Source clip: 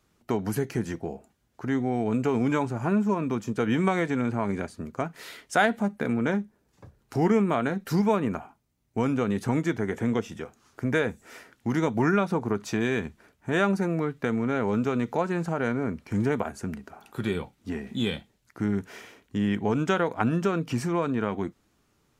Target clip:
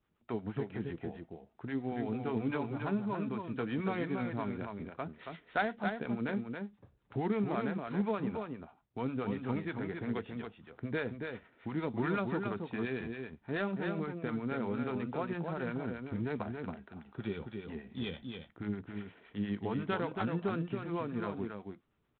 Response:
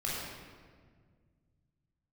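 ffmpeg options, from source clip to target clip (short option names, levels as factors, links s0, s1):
-filter_complex "[0:a]asettb=1/sr,asplit=3[s0][s1][s2];[s0]atrim=end=17.774[s3];[s1]atrim=start=17.77:end=18.63,asetpts=PTS-STARTPTS,afade=t=in:d=0.004:c=qsin,afade=t=out:st=0.856:d=0.004:c=qsin,asubboost=boost=7.5:cutoff=82[s4];[s2]atrim=start=18.626[s5];[s3][s4]acrossfade=d=0.004:c1=hsin:c2=qsin[s6];[s6][s5]acrossfade=d=0.004:c1=qsin:c2=hsin,acrossover=split=570[s7][s8];[s7]aeval=exprs='val(0)*(1-0.7/2+0.7/2*cos(2*PI*8.5*n/s))':c=same[s9];[s8]aeval=exprs='val(0)*(1-0.7/2-0.7/2*cos(2*PI*8.5*n/s))':c=same[s10];[s9][s10]amix=inputs=2:normalize=0,aecho=1:1:277:0.531,volume=0.447" -ar 8000 -c:a adpcm_ima_wav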